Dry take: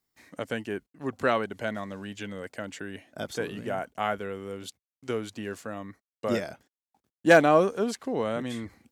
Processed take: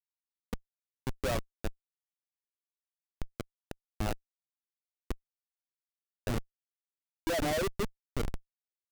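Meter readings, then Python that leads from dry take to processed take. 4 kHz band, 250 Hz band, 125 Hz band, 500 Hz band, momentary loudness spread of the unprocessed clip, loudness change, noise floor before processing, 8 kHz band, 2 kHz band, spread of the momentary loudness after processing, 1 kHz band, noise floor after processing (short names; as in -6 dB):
-5.0 dB, -10.5 dB, -2.5 dB, -12.0 dB, 18 LU, -9.0 dB, under -85 dBFS, -2.5 dB, -13.5 dB, 15 LU, -12.5 dB, under -85 dBFS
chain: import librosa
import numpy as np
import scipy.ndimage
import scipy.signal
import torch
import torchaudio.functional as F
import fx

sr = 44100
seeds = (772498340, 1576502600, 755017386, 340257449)

y = fx.spec_expand(x, sr, power=2.5)
y = fx.schmitt(y, sr, flips_db=-23.5)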